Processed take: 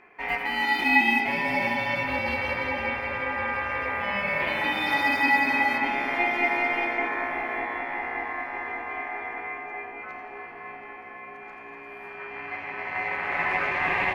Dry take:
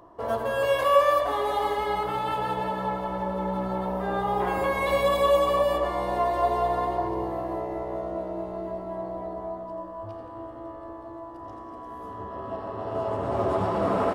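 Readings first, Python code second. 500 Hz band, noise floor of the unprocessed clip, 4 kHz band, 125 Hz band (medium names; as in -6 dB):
-9.0 dB, -41 dBFS, +3.5 dB, -7.0 dB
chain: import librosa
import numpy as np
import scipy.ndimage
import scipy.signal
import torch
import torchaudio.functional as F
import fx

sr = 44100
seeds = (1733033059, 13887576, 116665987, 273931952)

y = fx.peak_eq(x, sr, hz=7200.0, db=-7.5, octaves=0.78)
y = y * np.sin(2.0 * np.pi * 1400.0 * np.arange(len(y)) / sr)
y = fx.dynamic_eq(y, sr, hz=2700.0, q=1.0, threshold_db=-42.0, ratio=4.0, max_db=4)
y = fx.echo_bbd(y, sr, ms=587, stages=4096, feedback_pct=72, wet_db=-6.5)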